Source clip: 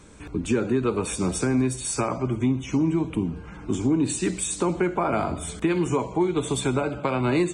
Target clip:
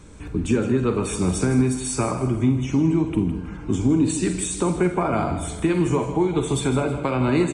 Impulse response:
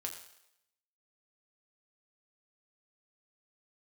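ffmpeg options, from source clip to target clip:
-filter_complex "[0:a]lowshelf=f=180:g=7.5,aecho=1:1:160|320|480|640:0.266|0.0958|0.0345|0.0124,asplit=2[s0][s1];[1:a]atrim=start_sample=2205,adelay=44[s2];[s1][s2]afir=irnorm=-1:irlink=0,volume=0.398[s3];[s0][s3]amix=inputs=2:normalize=0"

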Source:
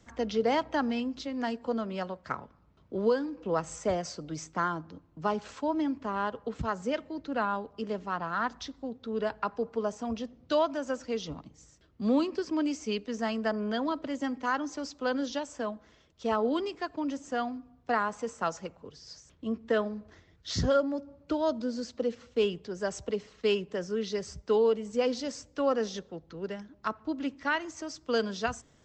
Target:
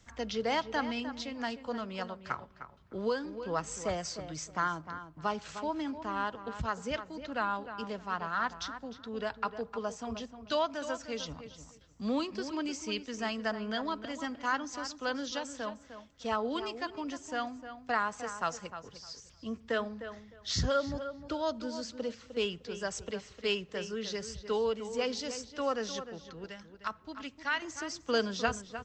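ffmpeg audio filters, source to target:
-filter_complex "[0:a]asetnsamples=n=441:p=0,asendcmd='26.44 equalizer g -15;27.62 equalizer g -4',equalizer=f=340:t=o:w=2.9:g=-9,asplit=2[s0][s1];[s1]adelay=305,lowpass=f=2900:p=1,volume=0.299,asplit=2[s2][s3];[s3]adelay=305,lowpass=f=2900:p=1,volume=0.2,asplit=2[s4][s5];[s5]adelay=305,lowpass=f=2900:p=1,volume=0.2[s6];[s0][s2][s4][s6]amix=inputs=4:normalize=0,volume=1.26"

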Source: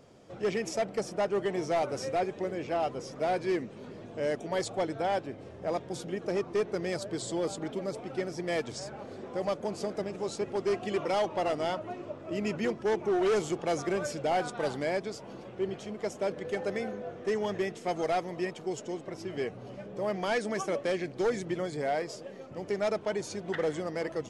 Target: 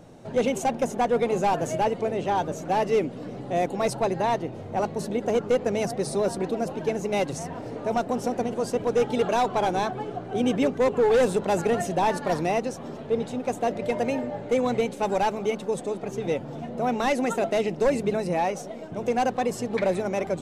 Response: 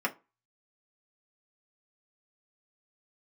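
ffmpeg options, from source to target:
-af "lowshelf=f=280:g=10.5,bandreject=f=60:t=h:w=6,bandreject=f=120:t=h:w=6,bandreject=f=180:t=h:w=6,asetrate=52479,aresample=44100,volume=1.5"

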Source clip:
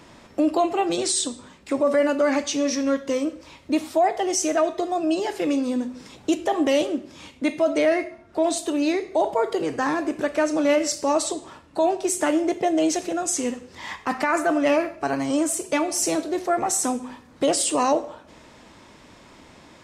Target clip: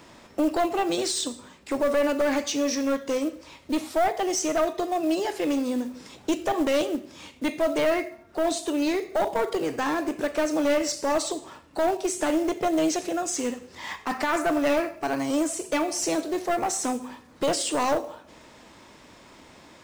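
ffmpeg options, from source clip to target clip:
-filter_complex "[0:a]acrossover=split=6900[s0][s1];[s1]acompressor=threshold=0.0112:ratio=4:attack=1:release=60[s2];[s0][s2]amix=inputs=2:normalize=0,bass=f=250:g=-3,treble=f=4000:g=1,acontrast=24,acrusher=bits=6:mode=log:mix=0:aa=0.000001,aeval=exprs='clip(val(0),-1,0.158)':c=same,volume=0.501"

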